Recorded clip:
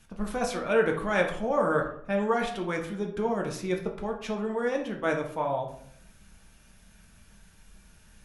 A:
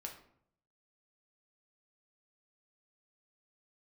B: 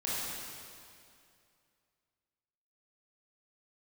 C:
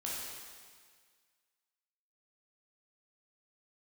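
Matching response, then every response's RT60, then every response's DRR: A; 0.65, 2.4, 1.7 seconds; 1.0, −8.5, −6.0 decibels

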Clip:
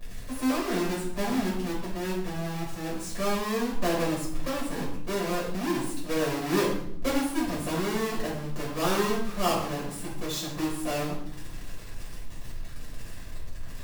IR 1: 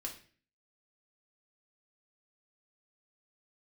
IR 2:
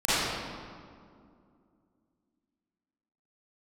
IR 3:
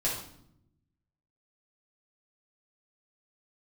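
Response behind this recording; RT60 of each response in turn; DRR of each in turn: 3; 0.40, 2.3, 0.70 seconds; 0.0, −14.5, −6.5 decibels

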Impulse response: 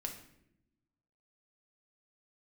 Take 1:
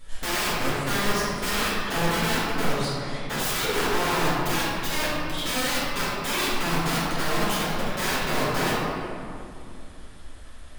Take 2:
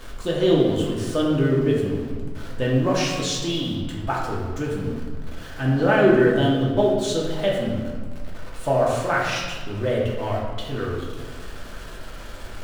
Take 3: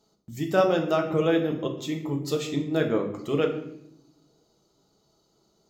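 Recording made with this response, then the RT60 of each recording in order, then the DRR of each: 3; 2.5, 1.6, 0.80 seconds; −10.5, −4.5, 2.0 decibels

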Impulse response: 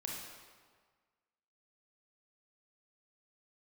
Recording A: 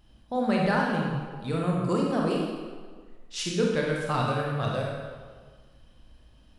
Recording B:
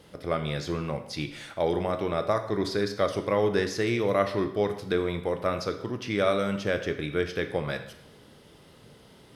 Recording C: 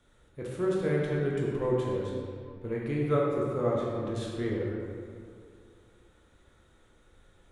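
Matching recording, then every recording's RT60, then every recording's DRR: A; 1.6, 0.80, 2.3 seconds; −2.5, 7.0, −4.0 decibels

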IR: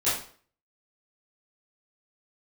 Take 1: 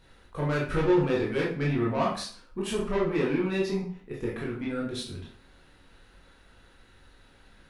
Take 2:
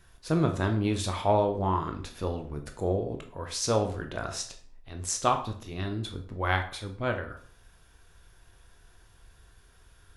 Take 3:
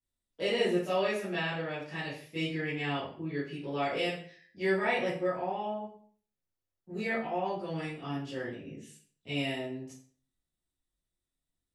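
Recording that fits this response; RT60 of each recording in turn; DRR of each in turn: 3; 0.50, 0.50, 0.50 seconds; −4.5, 5.0, −13.5 decibels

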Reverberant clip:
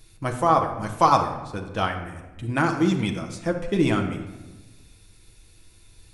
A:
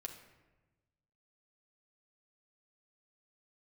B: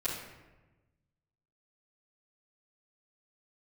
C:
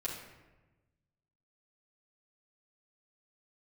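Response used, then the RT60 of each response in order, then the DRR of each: A; 1.2, 1.1, 1.1 seconds; 2.5, −12.5, −6.0 decibels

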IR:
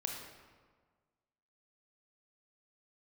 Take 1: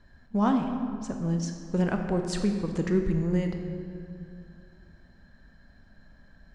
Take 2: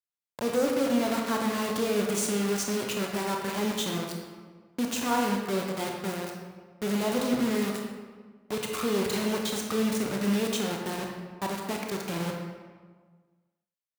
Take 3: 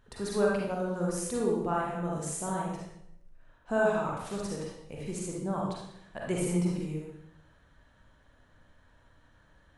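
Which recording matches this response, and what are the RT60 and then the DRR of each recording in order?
2; 2.4, 1.6, 0.75 seconds; 4.5, 0.5, −4.0 decibels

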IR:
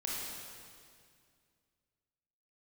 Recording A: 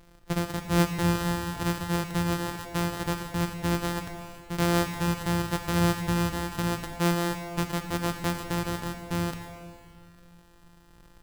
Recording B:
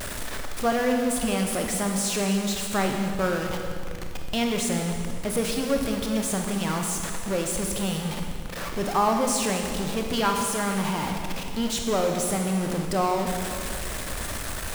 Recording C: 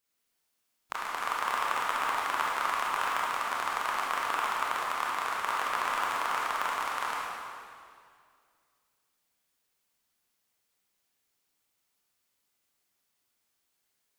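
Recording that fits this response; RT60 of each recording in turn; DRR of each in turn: C; 2.2, 2.2, 2.1 seconds; 6.5, 2.5, −5.0 decibels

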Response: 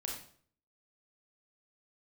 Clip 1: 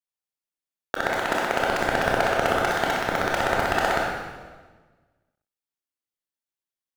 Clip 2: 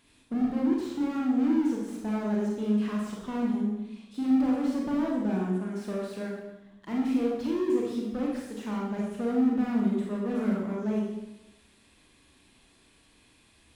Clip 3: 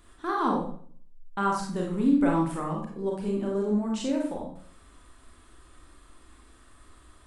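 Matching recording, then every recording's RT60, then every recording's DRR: 3; 1.4, 0.95, 0.55 seconds; −3.5, −3.0, −1.5 decibels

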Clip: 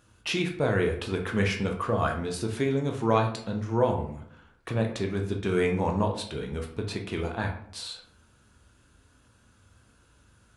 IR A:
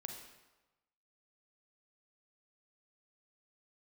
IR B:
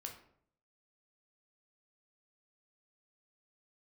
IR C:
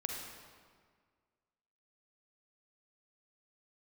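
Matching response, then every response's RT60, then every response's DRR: B; 1.1, 0.65, 1.8 seconds; 3.0, 2.0, 0.5 decibels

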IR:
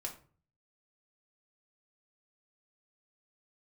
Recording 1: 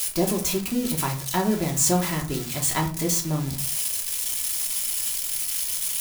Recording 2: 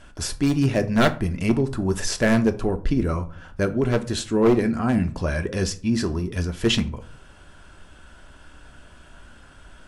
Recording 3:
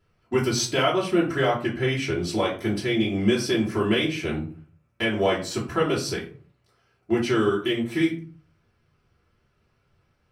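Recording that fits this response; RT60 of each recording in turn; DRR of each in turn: 1; 0.40, 0.45, 0.40 seconds; −0.5, 7.5, −7.0 decibels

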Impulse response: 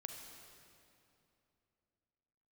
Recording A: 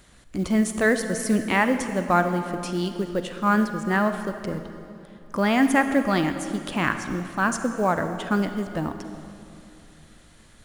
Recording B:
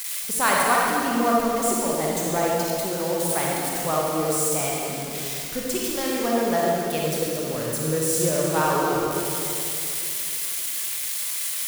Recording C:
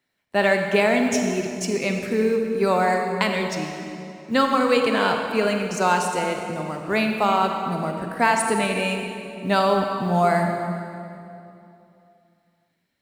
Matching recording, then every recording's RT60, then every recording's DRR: C; 2.8, 2.8, 2.8 seconds; 8.0, −4.0, 3.0 decibels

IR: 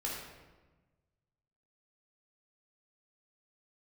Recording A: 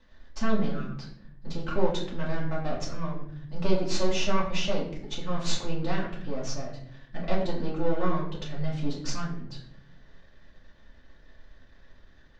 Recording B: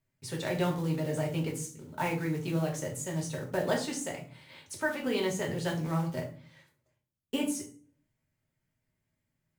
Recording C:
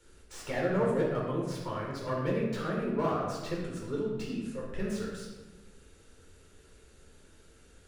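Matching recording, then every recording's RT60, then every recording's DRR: C; 0.70, 0.45, 1.2 seconds; −6.5, −1.0, −4.0 decibels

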